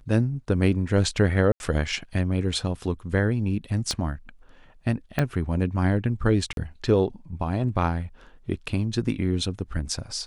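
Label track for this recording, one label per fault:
1.520000	1.600000	gap 81 ms
3.910000	3.910000	pop -14 dBFS
5.190000	5.190000	pop -10 dBFS
6.530000	6.570000	gap 42 ms

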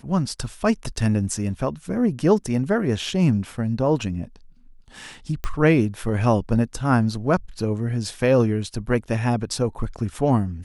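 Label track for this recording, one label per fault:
5.440000	5.440000	pop -14 dBFS

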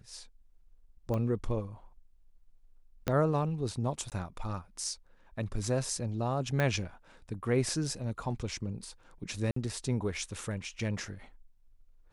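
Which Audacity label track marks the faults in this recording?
1.140000	1.140000	pop -23 dBFS
3.080000	3.080000	pop -15 dBFS
4.100000	4.120000	gap 18 ms
6.600000	6.600000	pop -17 dBFS
9.510000	9.560000	gap 54 ms

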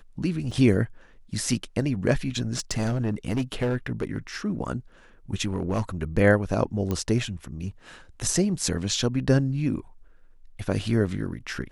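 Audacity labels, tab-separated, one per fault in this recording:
0.510000	0.510000	gap 4.5 ms
2.510000	4.180000	clipped -20.5 dBFS
5.440000	5.810000	clipped -20.5 dBFS
6.910000	6.910000	pop -15 dBFS

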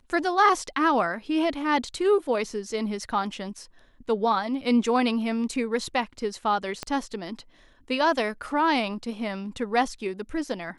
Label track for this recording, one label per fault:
6.830000	6.830000	pop -16 dBFS

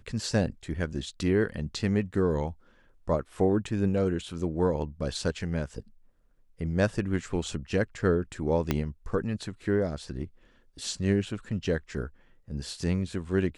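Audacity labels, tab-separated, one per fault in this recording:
8.710000	8.710000	pop -11 dBFS

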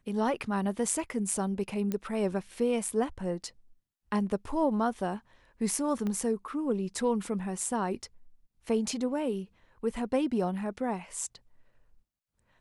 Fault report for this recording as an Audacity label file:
1.920000	1.920000	pop -19 dBFS
6.070000	6.070000	pop -22 dBFS

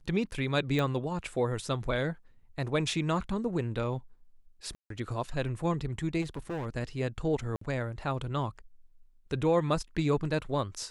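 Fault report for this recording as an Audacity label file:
0.790000	0.790000	pop -19 dBFS
4.750000	4.900000	gap 0.153 s
6.210000	6.670000	clipped -32 dBFS
7.560000	7.610000	gap 54 ms

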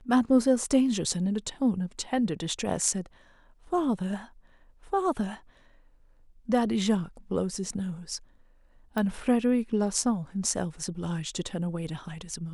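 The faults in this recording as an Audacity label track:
8.980000	8.980000	pop -18 dBFS

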